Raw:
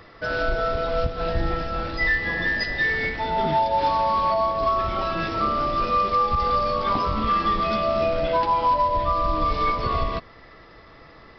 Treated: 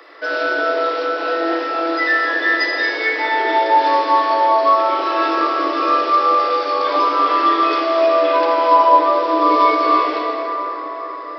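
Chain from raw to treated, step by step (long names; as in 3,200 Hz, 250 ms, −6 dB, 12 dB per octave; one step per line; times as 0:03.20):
Chebyshev high-pass filter 280 Hz, order 8
0:08.71–0:09.53: parametric band 410 Hz +7.5 dB 1.5 octaves
convolution reverb RT60 4.7 s, pre-delay 18 ms, DRR −2.5 dB
level +4.5 dB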